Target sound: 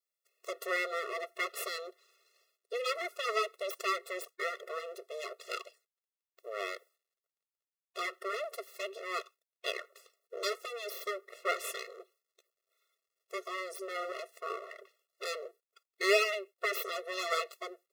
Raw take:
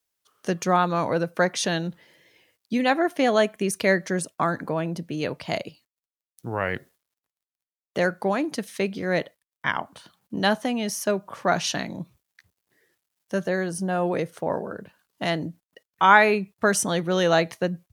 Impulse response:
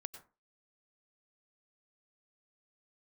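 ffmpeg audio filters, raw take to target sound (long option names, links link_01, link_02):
-af "aeval=exprs='abs(val(0))':channel_layout=same,afftfilt=real='re*eq(mod(floor(b*sr/1024/360),2),1)':imag='im*eq(mod(floor(b*sr/1024/360),2),1)':win_size=1024:overlap=0.75,volume=-4dB"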